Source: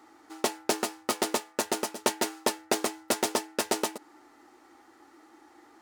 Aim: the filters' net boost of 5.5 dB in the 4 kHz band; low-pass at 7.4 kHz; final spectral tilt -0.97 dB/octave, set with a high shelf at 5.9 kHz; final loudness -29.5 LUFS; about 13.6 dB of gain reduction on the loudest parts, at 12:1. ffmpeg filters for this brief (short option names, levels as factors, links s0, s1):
-af "lowpass=7400,equalizer=f=4000:t=o:g=5,highshelf=f=5900:g=6,acompressor=threshold=0.0141:ratio=12,volume=4.73"